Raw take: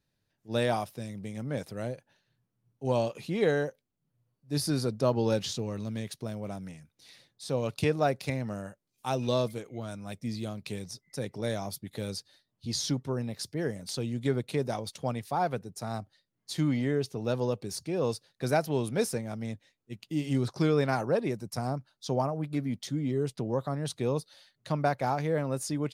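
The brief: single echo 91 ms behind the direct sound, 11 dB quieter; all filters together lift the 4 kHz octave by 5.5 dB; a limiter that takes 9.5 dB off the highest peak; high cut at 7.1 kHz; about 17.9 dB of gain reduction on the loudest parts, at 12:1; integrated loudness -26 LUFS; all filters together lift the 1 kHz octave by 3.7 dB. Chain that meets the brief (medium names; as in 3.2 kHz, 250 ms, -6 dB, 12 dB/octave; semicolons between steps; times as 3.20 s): low-pass 7.1 kHz; peaking EQ 1 kHz +5 dB; peaking EQ 4 kHz +7 dB; compression 12:1, threshold -38 dBFS; peak limiter -33 dBFS; delay 91 ms -11 dB; trim +18.5 dB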